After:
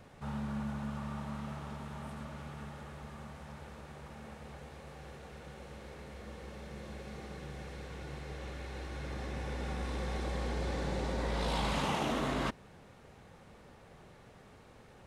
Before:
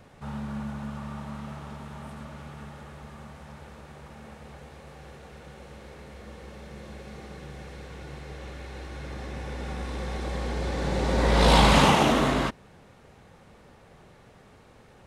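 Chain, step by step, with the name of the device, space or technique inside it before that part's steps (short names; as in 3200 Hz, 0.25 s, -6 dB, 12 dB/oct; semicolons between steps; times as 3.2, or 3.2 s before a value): compression on the reversed sound (reverse; compressor 5:1, threshold -28 dBFS, peak gain reduction 13 dB; reverse); gain -3 dB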